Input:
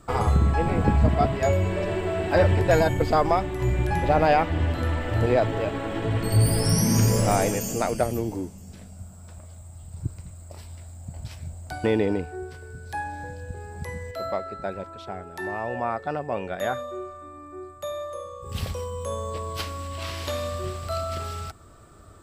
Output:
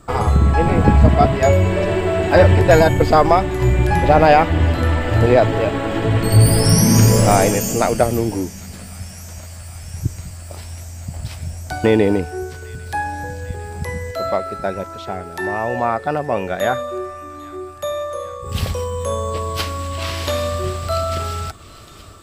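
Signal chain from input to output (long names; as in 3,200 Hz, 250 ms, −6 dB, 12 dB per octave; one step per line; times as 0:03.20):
automatic gain control gain up to 3.5 dB
on a send: delay with a high-pass on its return 800 ms, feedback 82%, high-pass 2,000 Hz, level −19 dB
on the sum: level +5 dB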